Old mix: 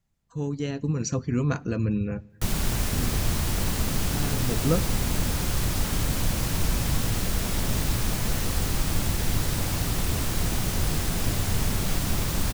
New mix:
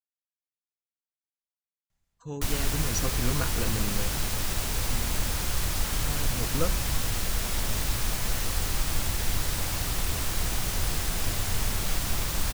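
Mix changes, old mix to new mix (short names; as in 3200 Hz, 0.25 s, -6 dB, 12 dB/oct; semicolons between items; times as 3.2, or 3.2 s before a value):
speech: entry +1.90 s; master: add bell 190 Hz -8.5 dB 2.7 oct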